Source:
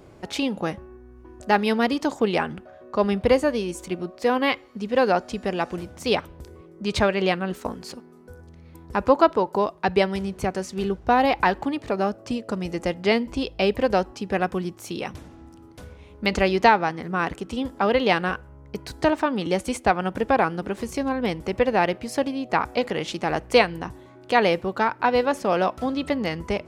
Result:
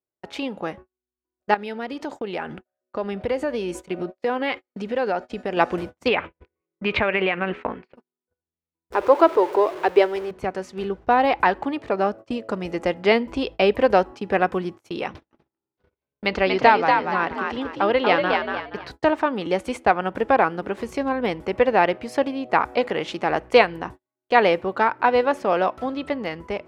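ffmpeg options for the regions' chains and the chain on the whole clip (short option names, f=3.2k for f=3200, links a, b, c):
-filter_complex "[0:a]asettb=1/sr,asplit=3[a][b][c];[a]atrim=end=1.544[d];[b]atrim=start=1.54:end=5.57,asetpts=PTS-STARTPTS,afade=t=in:d=0.004:c=qsin,afade=t=out:st=4.026:d=0.004:c=qsin,bandreject=f=1.1k:w=7.9,acompressor=threshold=-30dB:ratio=3:attack=3.2:release=140:knee=1:detection=peak[e];[c]atrim=start=5.566[f];[d][e]acrossfade=d=0.004:c1=hsin:c2=qsin[g];[g][f]acrossfade=d=0.004:c1=qsin:c2=hsin,asettb=1/sr,asplit=3[h][i][j];[h]atrim=end=6.084[k];[i]atrim=start=6.08:end=7.96,asetpts=PTS-STARTPTS,afade=t=in:d=0.004:c=qsin,afade=t=out:st=1.876:d=0.004:c=qsin,lowpass=f=2.4k:t=q:w=2.9,acompressor=threshold=-21dB:ratio=16:attack=3.2:release=140:knee=1:detection=peak[l];[j]atrim=start=7.956[m];[k][l]acrossfade=d=0.004:c1=hsin:c2=qsin[n];[n][m]acrossfade=d=0.004:c1=qsin:c2=hsin,asettb=1/sr,asplit=3[o][p][q];[o]atrim=end=8.924[r];[p]atrim=start=8.92:end=10.31,asetpts=PTS-STARTPTS,afade=t=in:d=0.004:c=qsin,afade=t=out:st=1.386:d=0.004:c=qsin,aeval=exprs='val(0)+0.5*0.0316*sgn(val(0))':c=same,lowshelf=f=280:t=q:w=3:g=-8,acompressor=mode=upward:threshold=-32dB:ratio=2.5:attack=3.2:release=140:knee=2.83:detection=peak[s];[q]atrim=start=10.306[t];[r][s]acrossfade=d=0.004:c1=hsin:c2=qsin[u];[u][t]acrossfade=d=0.004:c1=qsin:c2=hsin,asettb=1/sr,asplit=3[v][w][x];[v]atrim=end=15.074[y];[w]atrim=start=15.07:end=18.91,asetpts=PTS-STARTPTS,afade=t=in:d=0.004:c=qsin,afade=t=out:st=3.836:d=0.004:c=qsin,highshelf=f=6.3k:t=q:w=1.5:g=-8,asplit=5[z][aa][ab][ac][ad];[aa]adelay=237,afreqshift=63,volume=-4dB[ae];[ab]adelay=474,afreqshift=126,volume=-14.2dB[af];[ac]adelay=711,afreqshift=189,volume=-24.3dB[ag];[ad]adelay=948,afreqshift=252,volume=-34.5dB[ah];[z][ae][af][ag][ah]amix=inputs=5:normalize=0,atrim=end_sample=169344[ai];[x]atrim=start=18.906[aj];[y][ai]acrossfade=d=0.004:c1=hsin:c2=qsin[ak];[ak][aj]acrossfade=d=0.004:c1=qsin:c2=hsin,agate=range=-44dB:threshold=-36dB:ratio=16:detection=peak,dynaudnorm=f=360:g=9:m=11.5dB,bass=f=250:g=-8,treble=f=4k:g=-11,volume=-1dB"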